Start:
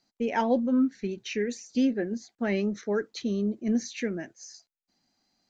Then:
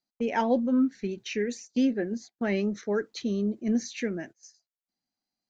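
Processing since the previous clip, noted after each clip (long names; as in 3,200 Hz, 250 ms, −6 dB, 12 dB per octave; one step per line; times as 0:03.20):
noise gate −44 dBFS, range −16 dB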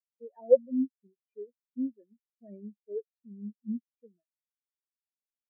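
comb filter 1.7 ms, depth 46%
every bin expanded away from the loudest bin 4 to 1
level +5 dB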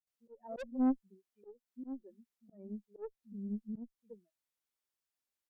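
multiband delay without the direct sound lows, highs 70 ms, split 160 Hz
tube saturation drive 30 dB, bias 0.4
volume swells 278 ms
level +5.5 dB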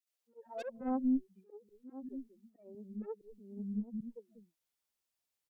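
three-band delay without the direct sound highs, mids, lows 60/250 ms, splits 300/1,500 Hz
level +3 dB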